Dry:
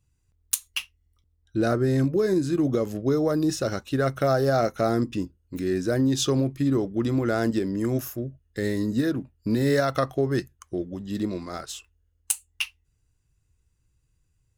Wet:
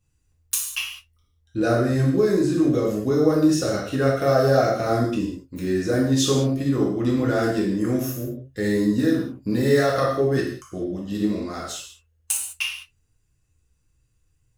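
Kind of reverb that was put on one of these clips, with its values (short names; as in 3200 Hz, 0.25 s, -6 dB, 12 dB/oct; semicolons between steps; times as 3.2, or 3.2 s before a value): non-linear reverb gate 0.23 s falling, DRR -4.5 dB; gain -2 dB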